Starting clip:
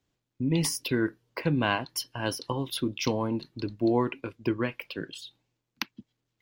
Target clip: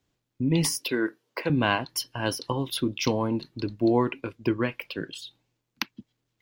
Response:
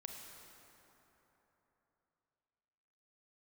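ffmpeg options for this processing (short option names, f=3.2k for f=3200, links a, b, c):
-filter_complex "[0:a]asettb=1/sr,asplit=3[a][b][c];[a]atrim=end=0.794[d];[b]atrim=start=0.79:end=1.5,asetpts=PTS-STARTPTS,afade=t=in:d=0.004:c=qsin,afade=t=out:st=0.706:d=0.004:c=qsin,highpass=290[e];[c]atrim=start=1.496[f];[d][e]acrossfade=d=0.004:c1=hsin:c2=qsin[g];[g][f]acrossfade=d=0.004:c1=qsin:c2=hsin,volume=2.5dB"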